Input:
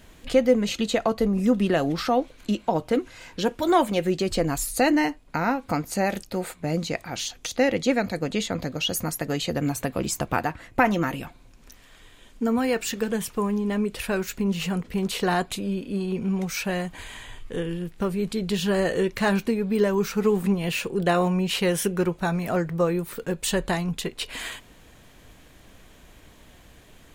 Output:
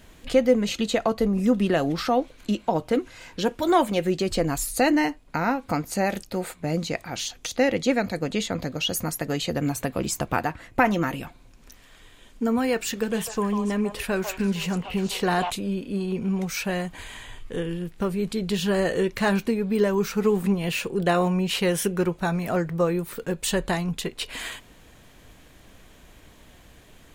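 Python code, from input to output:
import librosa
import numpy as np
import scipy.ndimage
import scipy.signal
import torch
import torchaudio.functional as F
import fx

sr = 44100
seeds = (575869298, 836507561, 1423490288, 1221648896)

y = fx.echo_stepped(x, sr, ms=148, hz=850.0, octaves=1.4, feedback_pct=70, wet_db=-2.0, at=(13.12, 15.49), fade=0.02)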